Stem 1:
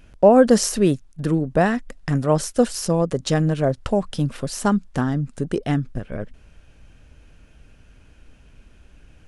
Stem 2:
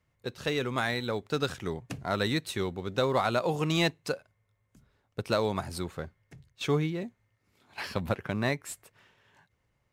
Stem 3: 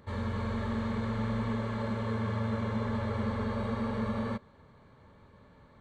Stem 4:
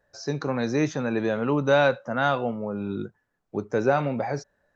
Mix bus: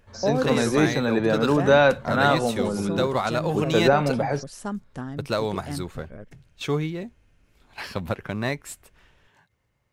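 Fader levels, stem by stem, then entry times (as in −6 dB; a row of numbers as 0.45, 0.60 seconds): −12.0, +2.0, −12.5, +3.0 decibels; 0.00, 0.00, 0.00, 0.00 seconds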